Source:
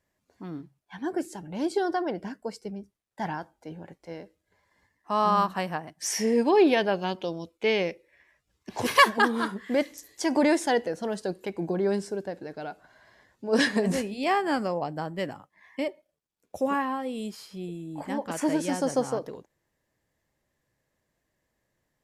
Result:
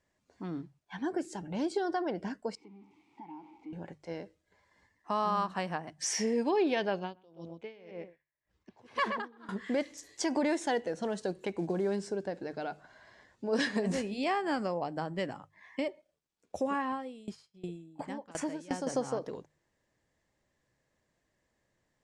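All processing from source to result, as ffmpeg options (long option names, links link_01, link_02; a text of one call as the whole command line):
ffmpeg -i in.wav -filter_complex "[0:a]asettb=1/sr,asplit=3[link_01][link_02][link_03];[link_01]atrim=end=2.554[link_04];[link_02]atrim=start=2.55:end=3.73,asetpts=PTS-STARTPTS,afade=type=in:duration=0.004:curve=qsin,afade=type=out:start_time=1.176:duration=0.004:curve=qsin,aeval=exprs='val(0)+0.5*0.00891*sgn(val(0))':channel_layout=same,acompressor=threshold=-34dB:ratio=4:attack=3.2:release=140:knee=1:detection=peak,asplit=3[link_05][link_06][link_07];[link_05]bandpass=frequency=300:width_type=q:width=8,volume=0dB[link_08];[link_06]bandpass=frequency=870:width_type=q:width=8,volume=-6dB[link_09];[link_07]bandpass=frequency=2240:width_type=q:width=8,volume=-9dB[link_10];[link_08][link_09][link_10]amix=inputs=3:normalize=0[link_11];[link_03]atrim=start=3.726[link_12];[link_04][link_11]acrossfade=duration=0.004:curve1=hsin:curve2=qsin[link_13];[link_13][link_12]acrossfade=duration=0.004:curve1=qsin:curve2=hsin,asettb=1/sr,asplit=3[link_14][link_15][link_16];[link_14]atrim=end=6.994[link_17];[link_15]atrim=start=6.99:end=9.49,asetpts=PTS-STARTPTS,afade=type=in:duration=0.004:curve=qsin,afade=type=out:start_time=2.496:duration=0.004:curve=qsin,lowpass=frequency=2600:poles=1,asplit=2[link_18][link_19];[link_19]adelay=126,lowpass=frequency=1800:poles=1,volume=-9dB,asplit=2[link_20][link_21];[link_21]adelay=126,lowpass=frequency=1800:poles=1,volume=0.16[link_22];[link_18][link_20][link_22]amix=inputs=3:normalize=0,atrim=end_sample=110250,aeval=exprs='val(0)*pow(10,-31*(0.5-0.5*cos(2*PI*1.9*n/s))/20)':channel_layout=same[link_23];[link_16]atrim=start=9.486[link_24];[link_17][link_23]acrossfade=duration=0.004:curve1=hsin:curve2=qsin[link_25];[link_25][link_24]acrossfade=duration=0.004:curve1=qsin:curve2=hsin,asettb=1/sr,asplit=3[link_26][link_27][link_28];[link_26]atrim=end=10.454[link_29];[link_27]atrim=start=10.45:end=11.96,asetpts=PTS-STARTPTS,afade=type=in:duration=0.004:curve=qsin,afade=type=out:start_time=1.506:duration=0.004:curve=qsin,bandreject=frequency=4900:width=11,acrusher=bits=8:mode=log:mix=0:aa=0.000001[link_30];[link_28]atrim=start=11.956[link_31];[link_29][link_30]acrossfade=duration=0.004:curve1=hsin:curve2=qsin[link_32];[link_32][link_31]acrossfade=duration=0.004:curve1=qsin:curve2=hsin,asettb=1/sr,asplit=3[link_33][link_34][link_35];[link_33]atrim=end=16.924[link_36];[link_34]atrim=start=16.92:end=18.87,asetpts=PTS-STARTPTS,afade=type=in:duration=0.004:curve=qsin,afade=type=out:start_time=1.946:duration=0.004:curve=qsin,agate=range=-33dB:threshold=-40dB:ratio=3:release=100:detection=peak,aeval=exprs='val(0)*pow(10,-22*if(lt(mod(2.8*n/s,1),2*abs(2.8)/1000),1-mod(2.8*n/s,1)/(2*abs(2.8)/1000),(mod(2.8*n/s,1)-2*abs(2.8)/1000)/(1-2*abs(2.8)/1000))/20)':channel_layout=same[link_37];[link_35]atrim=start=18.866[link_38];[link_36][link_37]acrossfade=duration=0.004:curve1=hsin:curve2=qsin[link_39];[link_39][link_38]acrossfade=duration=0.004:curve1=qsin:curve2=hsin,lowpass=frequency=8700:width=0.5412,lowpass=frequency=8700:width=1.3066,bandreject=frequency=50:width_type=h:width=6,bandreject=frequency=100:width_type=h:width=6,bandreject=frequency=150:width_type=h:width=6,acompressor=threshold=-32dB:ratio=2" out.wav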